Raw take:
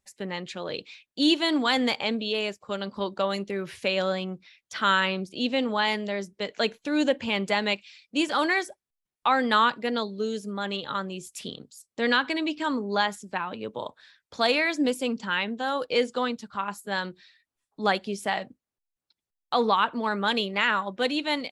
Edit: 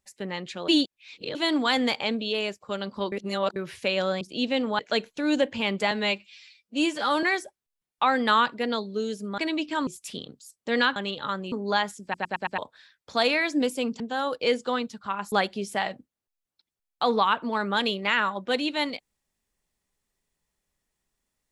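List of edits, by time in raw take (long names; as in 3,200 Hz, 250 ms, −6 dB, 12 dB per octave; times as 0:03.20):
0:00.68–0:01.35: reverse
0:03.12–0:03.56: reverse
0:04.21–0:05.23: remove
0:05.81–0:06.47: remove
0:07.59–0:08.47: time-stretch 1.5×
0:10.62–0:11.18: swap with 0:12.27–0:12.76
0:13.27: stutter in place 0.11 s, 5 plays
0:15.24–0:15.49: remove
0:16.81–0:17.83: remove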